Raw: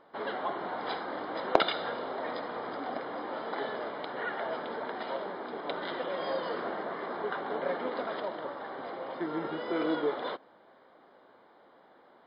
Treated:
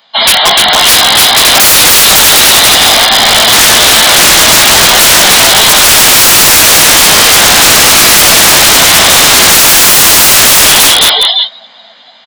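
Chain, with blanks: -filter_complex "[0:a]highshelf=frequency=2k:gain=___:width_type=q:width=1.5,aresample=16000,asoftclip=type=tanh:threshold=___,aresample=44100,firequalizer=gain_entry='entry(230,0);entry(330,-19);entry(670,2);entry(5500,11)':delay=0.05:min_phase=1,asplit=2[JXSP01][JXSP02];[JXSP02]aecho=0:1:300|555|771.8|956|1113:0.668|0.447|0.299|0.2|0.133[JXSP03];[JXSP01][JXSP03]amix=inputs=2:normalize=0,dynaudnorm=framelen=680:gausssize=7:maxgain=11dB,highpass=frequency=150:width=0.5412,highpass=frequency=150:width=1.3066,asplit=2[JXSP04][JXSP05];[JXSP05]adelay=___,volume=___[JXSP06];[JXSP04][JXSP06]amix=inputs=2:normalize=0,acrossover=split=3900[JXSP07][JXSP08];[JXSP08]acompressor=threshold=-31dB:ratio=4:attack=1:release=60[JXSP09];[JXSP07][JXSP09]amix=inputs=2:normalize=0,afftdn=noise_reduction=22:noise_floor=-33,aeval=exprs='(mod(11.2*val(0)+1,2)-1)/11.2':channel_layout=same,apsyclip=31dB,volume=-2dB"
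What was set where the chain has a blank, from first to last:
12.5, -15.5dB, 18, -5dB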